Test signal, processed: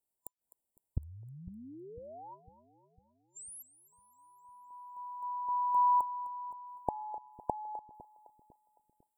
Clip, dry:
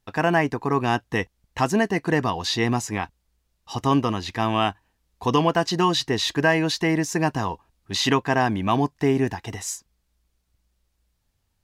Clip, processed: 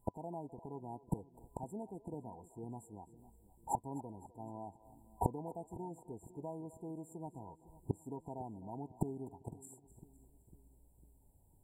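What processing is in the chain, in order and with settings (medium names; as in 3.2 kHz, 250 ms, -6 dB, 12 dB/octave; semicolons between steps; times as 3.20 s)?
inverted gate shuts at -23 dBFS, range -28 dB; two-band feedback delay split 370 Hz, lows 502 ms, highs 255 ms, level -16 dB; FFT band-reject 1–7.2 kHz; trim +4.5 dB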